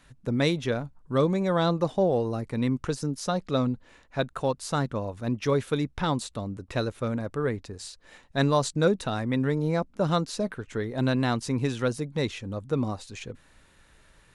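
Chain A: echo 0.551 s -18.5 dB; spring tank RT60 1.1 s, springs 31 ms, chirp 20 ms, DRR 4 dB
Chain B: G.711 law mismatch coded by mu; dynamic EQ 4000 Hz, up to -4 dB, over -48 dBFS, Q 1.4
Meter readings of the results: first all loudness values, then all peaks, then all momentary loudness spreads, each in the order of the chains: -26.0, -27.5 LUFS; -9.5, -10.0 dBFS; 10, 10 LU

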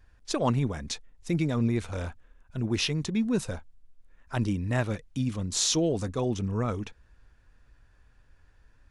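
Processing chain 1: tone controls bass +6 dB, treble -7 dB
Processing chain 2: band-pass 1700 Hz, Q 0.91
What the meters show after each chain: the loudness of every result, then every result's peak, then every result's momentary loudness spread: -26.5, -39.5 LUFS; -10.5, -16.5 dBFS; 12, 12 LU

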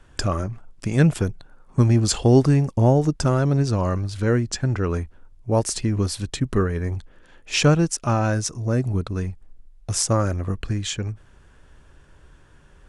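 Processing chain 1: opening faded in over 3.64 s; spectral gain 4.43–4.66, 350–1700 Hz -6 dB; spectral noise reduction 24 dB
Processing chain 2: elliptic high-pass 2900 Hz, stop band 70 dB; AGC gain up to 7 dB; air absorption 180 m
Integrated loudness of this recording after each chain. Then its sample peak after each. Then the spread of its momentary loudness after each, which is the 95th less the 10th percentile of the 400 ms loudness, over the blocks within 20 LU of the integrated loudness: -23.0, -34.0 LUFS; -5.5, -11.0 dBFS; 13, 20 LU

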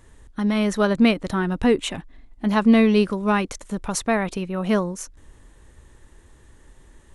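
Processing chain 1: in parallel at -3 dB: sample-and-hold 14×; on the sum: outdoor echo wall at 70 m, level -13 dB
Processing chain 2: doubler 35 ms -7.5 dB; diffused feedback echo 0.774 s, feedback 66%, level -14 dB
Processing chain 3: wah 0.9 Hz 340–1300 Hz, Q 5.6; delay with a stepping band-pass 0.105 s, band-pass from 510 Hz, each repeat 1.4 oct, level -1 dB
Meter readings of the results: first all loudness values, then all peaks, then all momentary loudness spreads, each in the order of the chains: -17.0, -20.5, -31.5 LUFS; -2.0, -4.0, -14.0 dBFS; 16, 22, 17 LU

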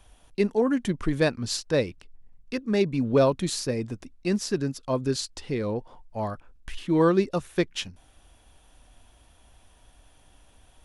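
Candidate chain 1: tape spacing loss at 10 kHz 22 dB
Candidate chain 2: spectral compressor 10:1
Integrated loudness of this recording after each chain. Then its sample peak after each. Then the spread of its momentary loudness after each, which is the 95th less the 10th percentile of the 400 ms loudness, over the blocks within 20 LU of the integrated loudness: -28.0, -33.5 LUFS; -10.5, -9.5 dBFS; 14, 14 LU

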